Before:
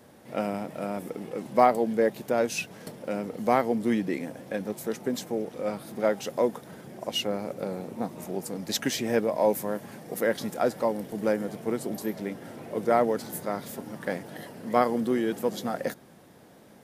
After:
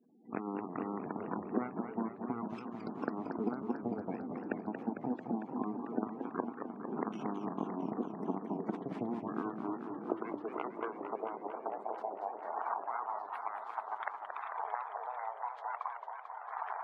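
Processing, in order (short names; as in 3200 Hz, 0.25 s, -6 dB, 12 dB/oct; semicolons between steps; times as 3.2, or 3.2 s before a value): 4.83–7.57 stepped spectrum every 50 ms; recorder AGC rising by 34 dB/s; added harmonics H 6 -16 dB, 7 -16 dB, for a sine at -1 dBFS; bell 560 Hz -12.5 dB 0.21 oct; compressor 8:1, threshold -33 dBFS, peak gain reduction 19.5 dB; high-pass sweep 240 Hz -> 890 Hz, 9.07–12.88; spectral gate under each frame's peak -15 dB strong; LPF 1700 Hz 12 dB/oct; low shelf 100 Hz +6 dB; warbling echo 0.224 s, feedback 78%, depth 205 cents, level -7 dB; gain -1 dB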